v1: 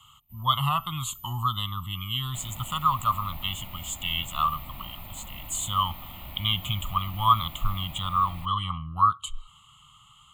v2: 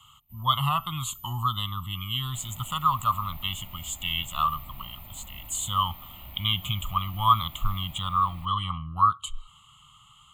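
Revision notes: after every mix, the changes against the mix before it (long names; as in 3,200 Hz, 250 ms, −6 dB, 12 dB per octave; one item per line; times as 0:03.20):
second sound −5.5 dB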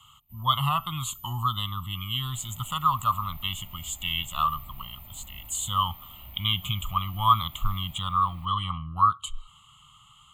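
second sound −4.5 dB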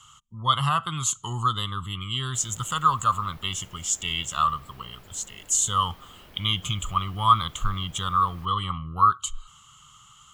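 first sound: muted
master: remove phaser with its sweep stopped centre 1,600 Hz, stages 6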